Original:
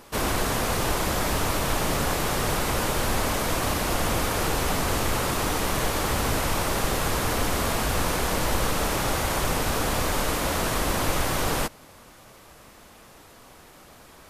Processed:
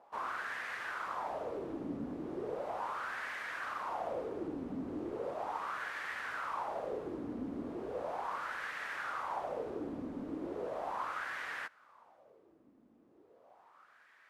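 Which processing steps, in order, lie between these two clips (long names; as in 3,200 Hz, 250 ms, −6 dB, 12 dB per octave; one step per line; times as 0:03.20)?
LFO wah 0.37 Hz 260–1,800 Hz, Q 4.2
level −3 dB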